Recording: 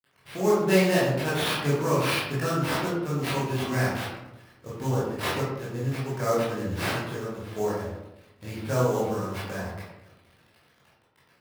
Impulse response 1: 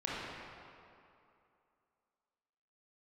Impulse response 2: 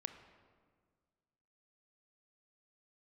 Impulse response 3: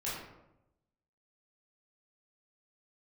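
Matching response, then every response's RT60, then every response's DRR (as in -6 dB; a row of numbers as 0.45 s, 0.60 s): 3; 2.6 s, 1.7 s, 0.90 s; -7.5 dB, 8.0 dB, -9.0 dB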